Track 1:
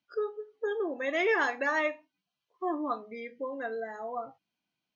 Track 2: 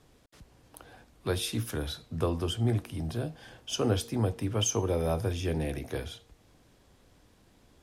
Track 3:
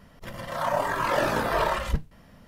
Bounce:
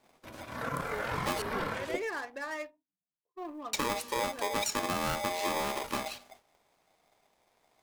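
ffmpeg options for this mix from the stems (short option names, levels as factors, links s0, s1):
-filter_complex "[0:a]adynamicsmooth=sensitivity=6.5:basefreq=670,acrusher=bits=9:mode=log:mix=0:aa=0.000001,adelay=750,volume=0.335[s0];[1:a]aeval=exprs='val(0)*sgn(sin(2*PI*710*n/s))':c=same,volume=1.26,asplit=3[s1][s2][s3];[s1]atrim=end=1.42,asetpts=PTS-STARTPTS,afade=t=out:st=1.416:d=0.004:c=hsin[s4];[s2]atrim=start=1.42:end=3.73,asetpts=PTS-STARTPTS,volume=0[s5];[s3]atrim=start=3.73,asetpts=PTS-STARTPTS,afade=t=in:d=0.004:c=hsin[s6];[s4][s5][s6]concat=n=3:v=0:a=1[s7];[2:a]highpass=f=43:w=0.5412,highpass=f=43:w=1.3066,aeval=exprs='val(0)*sin(2*PI*440*n/s)':c=same,volume=0.531[s8];[s7][s8]amix=inputs=2:normalize=0,agate=range=0.251:threshold=0.00178:ratio=16:detection=peak,acompressor=threshold=0.0398:ratio=12,volume=1[s9];[s0][s9]amix=inputs=2:normalize=0"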